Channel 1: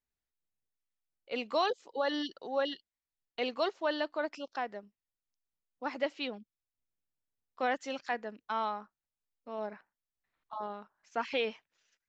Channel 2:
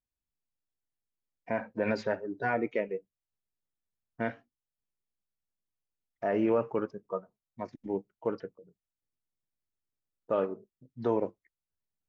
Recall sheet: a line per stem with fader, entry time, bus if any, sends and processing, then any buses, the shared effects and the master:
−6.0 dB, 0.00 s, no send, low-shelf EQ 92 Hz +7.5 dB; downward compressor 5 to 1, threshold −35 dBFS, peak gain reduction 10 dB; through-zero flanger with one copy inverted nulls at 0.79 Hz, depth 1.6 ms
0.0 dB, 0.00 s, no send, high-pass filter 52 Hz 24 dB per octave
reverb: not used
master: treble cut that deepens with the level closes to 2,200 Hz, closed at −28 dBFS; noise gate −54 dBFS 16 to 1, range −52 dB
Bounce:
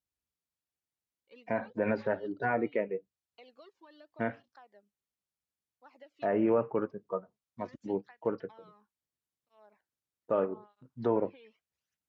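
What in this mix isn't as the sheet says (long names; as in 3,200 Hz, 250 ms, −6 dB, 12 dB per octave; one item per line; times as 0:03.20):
stem 1 −6.0 dB → −15.0 dB
master: missing noise gate −54 dBFS 16 to 1, range −52 dB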